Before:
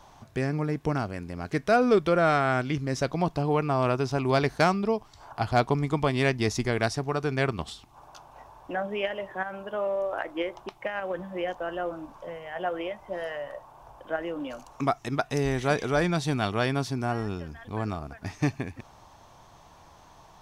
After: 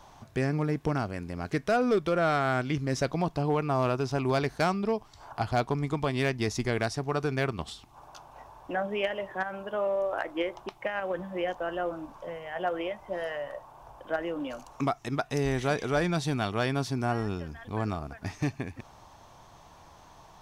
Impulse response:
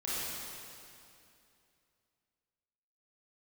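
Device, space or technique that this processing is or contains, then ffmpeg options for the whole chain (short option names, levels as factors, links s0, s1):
limiter into clipper: -af "alimiter=limit=0.15:level=0:latency=1:release=394,asoftclip=type=hard:threshold=0.119"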